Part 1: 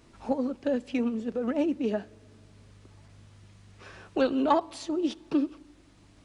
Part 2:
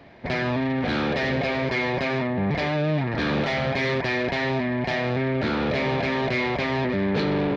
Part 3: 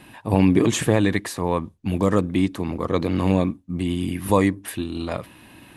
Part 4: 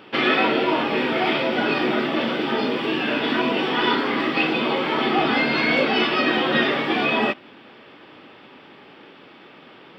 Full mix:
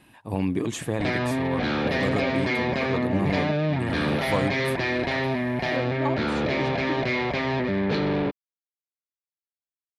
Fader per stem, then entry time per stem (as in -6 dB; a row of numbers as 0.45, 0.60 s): -6.5 dB, -1.0 dB, -9.0 dB, off; 1.55 s, 0.75 s, 0.00 s, off